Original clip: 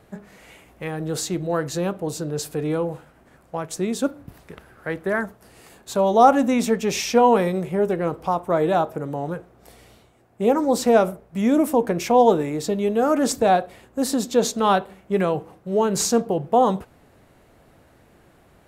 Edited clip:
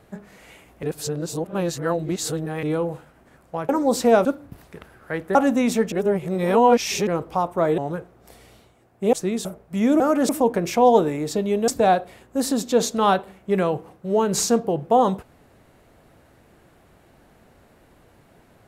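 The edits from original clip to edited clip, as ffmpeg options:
-filter_complex "[0:a]asplit=14[a][b][c][d][e][f][g][h][i][j][k][l][m][n];[a]atrim=end=0.832[o];[b]atrim=start=0.828:end=2.632,asetpts=PTS-STARTPTS,areverse[p];[c]atrim=start=2.628:end=3.692[q];[d]atrim=start=10.508:end=11.072[r];[e]atrim=start=4.008:end=5.112[s];[f]atrim=start=6.268:end=6.842[t];[g]atrim=start=6.838:end=7.992,asetpts=PTS-STARTPTS,areverse[u];[h]atrim=start=7.988:end=8.702[v];[i]atrim=start=9.158:end=10.512[w];[j]atrim=start=3.688:end=4.012[x];[k]atrim=start=11.068:end=11.622[y];[l]atrim=start=13.008:end=13.302[z];[m]atrim=start=11.618:end=13.012[aa];[n]atrim=start=13.298[ab];[o][p]acrossfade=d=0.004:c1=hsin:c2=hsin[ac];[ac][q]acrossfade=d=0.004:c1=hsin:c2=hsin[ad];[ad][r]acrossfade=d=0.004:c1=hsin:c2=hsin[ae];[ae][s]acrossfade=d=0.004:c1=hsin:c2=hsin[af];[af][t]acrossfade=d=0.004:c1=hsin:c2=hsin[ag];[ag][u]acrossfade=d=0.004:c1=hsin:c2=hsin[ah];[ah][v]acrossfade=d=0.004:c1=hsin:c2=hsin[ai];[ai][w]acrossfade=d=0.004:c1=hsin:c2=hsin[aj];[aj][x]acrossfade=d=0.004:c1=hsin:c2=hsin[ak];[ak][y]acrossfade=d=0.004:c1=hsin:c2=hsin[al];[al][z]acrossfade=d=0.004:c1=hsin:c2=hsin[am];[am][aa]acrossfade=d=0.004:c1=hsin:c2=hsin[an];[an][ab]acrossfade=d=0.004:c1=hsin:c2=hsin"

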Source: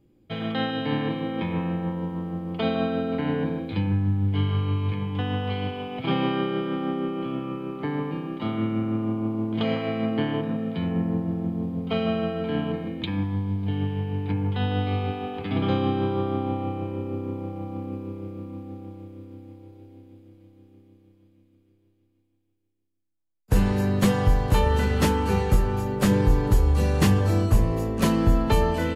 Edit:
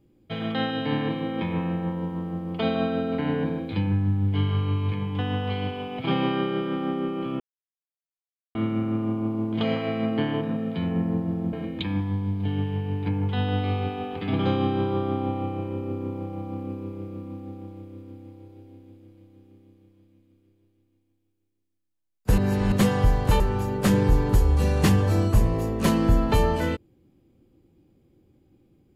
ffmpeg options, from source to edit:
-filter_complex "[0:a]asplit=7[a][b][c][d][e][f][g];[a]atrim=end=7.4,asetpts=PTS-STARTPTS,afade=t=out:st=7.396:d=0.004:c=hsin[h];[b]atrim=start=7.4:end=8.55,asetpts=PTS-STARTPTS,volume=0[i];[c]atrim=start=8.55:end=11.532,asetpts=PTS-STARTPTS,afade=t=in:d=0.004:c=hsin[j];[d]atrim=start=12.758:end=23.612[k];[e]atrim=start=23.608:end=23.952,asetpts=PTS-STARTPTS,areverse[l];[f]atrim=start=23.948:end=24.632[m];[g]atrim=start=25.578[n];[h][i][j]concat=n=3:v=0:a=1[o];[o][k]acrossfade=d=0.004:c1=hsin:c2=hsin[p];[p][l]acrossfade=d=0.004:c1=hsin:c2=hsin[q];[q][m]acrossfade=d=0.004:c1=hsin:c2=hsin[r];[r][n]acrossfade=d=0.004:c1=hsin:c2=hsin"

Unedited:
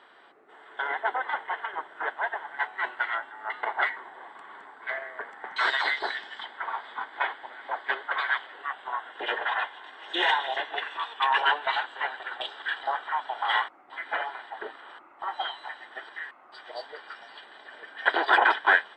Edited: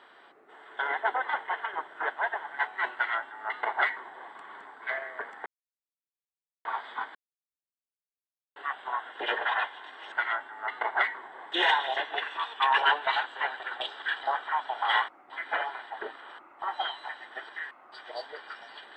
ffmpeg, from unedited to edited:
-filter_complex "[0:a]asplit=7[a][b][c][d][e][f][g];[a]atrim=end=5.46,asetpts=PTS-STARTPTS,afade=t=out:st=5.456:d=0.004:c=hsin[h];[b]atrim=start=5.46:end=6.65,asetpts=PTS-STARTPTS,volume=0[i];[c]atrim=start=6.65:end=7.15,asetpts=PTS-STARTPTS,afade=t=in:d=0.004:c=hsin,afade=t=out:st=0.496:d=0.004:c=hsin[j];[d]atrim=start=7.15:end=8.56,asetpts=PTS-STARTPTS,volume=0[k];[e]atrim=start=8.56:end=10.122,asetpts=PTS-STARTPTS,afade=t=in:d=0.004:c=hsin[l];[f]atrim=start=2.938:end=4.342[m];[g]atrim=start=10.118[n];[h][i][j][k][l]concat=n=5:v=0:a=1[o];[o][m]acrossfade=d=0.004:c1=hsin:c2=hsin[p];[p][n]acrossfade=d=0.004:c1=hsin:c2=hsin"

